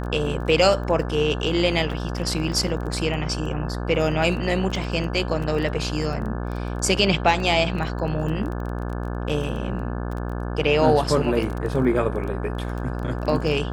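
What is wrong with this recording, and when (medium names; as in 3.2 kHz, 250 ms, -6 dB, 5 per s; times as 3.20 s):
buzz 60 Hz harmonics 29 -28 dBFS
crackle 14 per s -29 dBFS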